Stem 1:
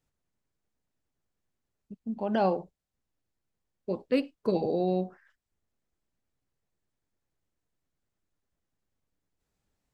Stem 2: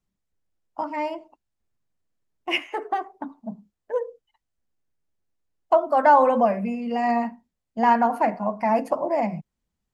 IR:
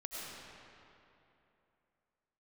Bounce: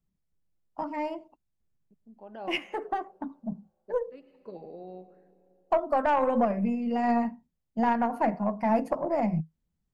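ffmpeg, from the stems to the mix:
-filter_complex "[0:a]lowpass=frequency=1100:poles=1,agate=range=-33dB:threshold=-55dB:ratio=3:detection=peak,highpass=frequency=560:poles=1,volume=-8dB,asplit=2[link_01][link_02];[link_02]volume=-13dB[link_03];[1:a]lowshelf=frequency=400:gain=8.5,volume=-3.5dB,asplit=2[link_04][link_05];[link_05]apad=whole_len=438258[link_06];[link_01][link_06]sidechaincompress=threshold=-37dB:ratio=4:attack=16:release=390[link_07];[2:a]atrim=start_sample=2205[link_08];[link_03][link_08]afir=irnorm=-1:irlink=0[link_09];[link_07][link_04][link_09]amix=inputs=3:normalize=0,equalizer=frequency=160:width_type=o:width=0.21:gain=8,aeval=exprs='0.473*(cos(1*acos(clip(val(0)/0.473,-1,1)))-cos(1*PI/2))+0.0531*(cos(3*acos(clip(val(0)/0.473,-1,1)))-cos(3*PI/2))+0.0335*(cos(4*acos(clip(val(0)/0.473,-1,1)))-cos(4*PI/2))+0.015*(cos(6*acos(clip(val(0)/0.473,-1,1)))-cos(6*PI/2))+0.00473*(cos(8*acos(clip(val(0)/0.473,-1,1)))-cos(8*PI/2))':channel_layout=same,alimiter=limit=-13.5dB:level=0:latency=1:release=202"

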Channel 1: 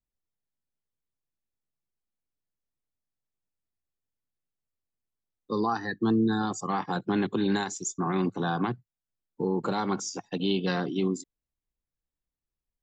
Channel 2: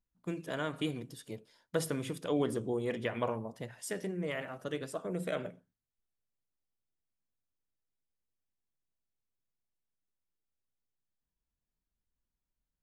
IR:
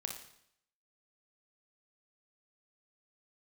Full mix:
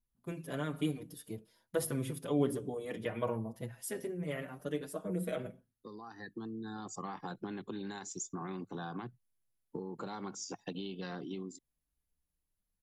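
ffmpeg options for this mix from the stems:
-filter_complex "[0:a]acompressor=threshold=-34dB:ratio=16,adelay=350,volume=-3.5dB[link_01];[1:a]lowshelf=frequency=400:gain=7,asplit=2[link_02][link_03];[link_03]adelay=5.6,afreqshift=0.53[link_04];[link_02][link_04]amix=inputs=2:normalize=1,volume=-2dB,asplit=2[link_05][link_06];[link_06]apad=whole_len=581151[link_07];[link_01][link_07]sidechaincompress=threshold=-43dB:ratio=8:attack=10:release=1460[link_08];[link_08][link_05]amix=inputs=2:normalize=0,equalizer=frequency=11000:width_type=o:width=0.25:gain=14.5"

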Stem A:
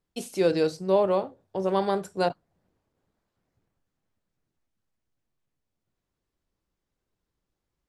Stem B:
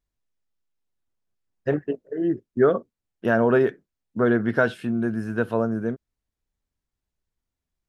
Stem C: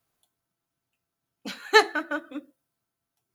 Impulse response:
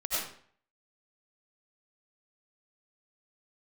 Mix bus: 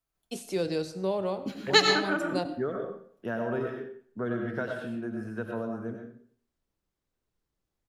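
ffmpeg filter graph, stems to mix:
-filter_complex "[0:a]adelay=150,volume=-3dB,asplit=2[link_01][link_02];[link_02]volume=-21dB[link_03];[1:a]volume=-13.5dB,asplit=2[link_04][link_05];[link_05]volume=-5.5dB[link_06];[2:a]afwtdn=0.02,volume=2.5dB,asplit=2[link_07][link_08];[link_08]volume=-6.5dB[link_09];[3:a]atrim=start_sample=2205[link_10];[link_03][link_06][link_09]amix=inputs=3:normalize=0[link_11];[link_11][link_10]afir=irnorm=-1:irlink=0[link_12];[link_01][link_04][link_07][link_12]amix=inputs=4:normalize=0,acrossover=split=240|3000[link_13][link_14][link_15];[link_14]acompressor=threshold=-32dB:ratio=2[link_16];[link_13][link_16][link_15]amix=inputs=3:normalize=0"

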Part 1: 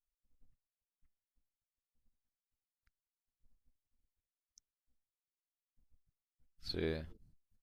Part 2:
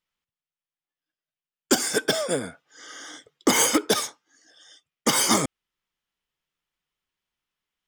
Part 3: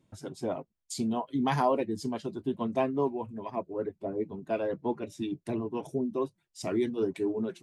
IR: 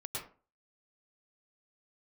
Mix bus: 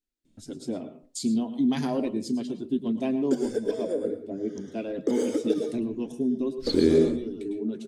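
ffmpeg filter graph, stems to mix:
-filter_complex "[0:a]highshelf=frequency=4500:gain=-8.5,dynaudnorm=framelen=750:gausssize=3:maxgain=10dB,equalizer=frequency=320:width_type=o:width=1.3:gain=10.5,volume=-1.5dB,asplit=3[link_01][link_02][link_03];[link_02]volume=-6dB[link_04];[1:a]bandpass=frequency=470:width_type=q:width=4.4:csg=0,aemphasis=mode=production:type=50kf,adelay=1600,volume=-1dB,asplit=2[link_05][link_06];[link_06]volume=-3dB[link_07];[2:a]adelay=250,volume=-4.5dB,asplit=2[link_08][link_09];[link_09]volume=-9dB[link_10];[link_03]apad=whole_len=347197[link_11];[link_08][link_11]sidechaincompress=threshold=-35dB:ratio=8:attack=6.5:release=717[link_12];[link_01][link_05]amix=inputs=2:normalize=0,equalizer=frequency=1600:width_type=o:width=0.77:gain=6,acompressor=threshold=-32dB:ratio=2.5,volume=0dB[link_13];[3:a]atrim=start_sample=2205[link_14];[link_04][link_07][link_10]amix=inputs=3:normalize=0[link_15];[link_15][link_14]afir=irnorm=-1:irlink=0[link_16];[link_12][link_13][link_16]amix=inputs=3:normalize=0,equalizer=frequency=125:width_type=o:width=1:gain=-4,equalizer=frequency=250:width_type=o:width=1:gain=11,equalizer=frequency=1000:width_type=o:width=1:gain=-10,equalizer=frequency=4000:width_type=o:width=1:gain=6,equalizer=frequency=8000:width_type=o:width=1:gain=6"

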